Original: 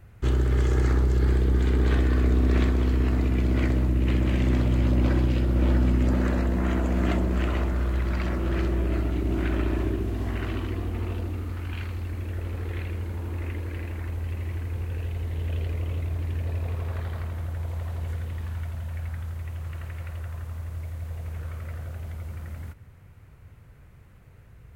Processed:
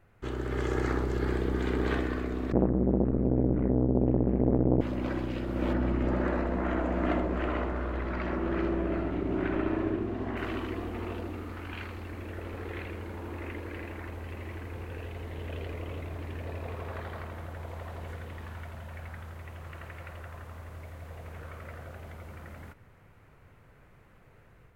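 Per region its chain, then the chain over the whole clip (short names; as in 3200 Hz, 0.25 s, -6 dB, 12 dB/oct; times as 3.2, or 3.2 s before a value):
2.52–4.81 LPF 1500 Hz + tilt -3.5 dB/oct + core saturation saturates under 280 Hz
5.73–10.37 LPF 2000 Hz 6 dB/oct + echo 78 ms -8 dB
whole clip: high shelf 3100 Hz -10 dB; AGC gain up to 6 dB; bell 69 Hz -14.5 dB 2.8 oct; gain -3 dB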